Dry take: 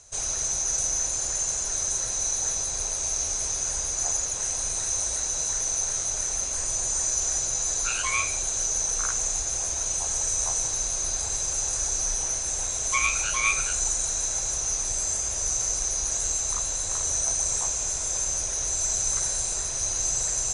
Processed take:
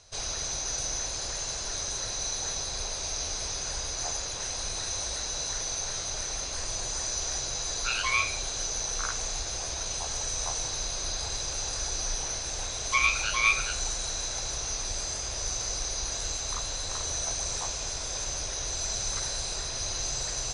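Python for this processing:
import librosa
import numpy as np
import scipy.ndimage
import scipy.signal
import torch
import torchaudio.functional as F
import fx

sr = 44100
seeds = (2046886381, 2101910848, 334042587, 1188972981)

y = fx.high_shelf_res(x, sr, hz=5800.0, db=-7.5, q=3.0)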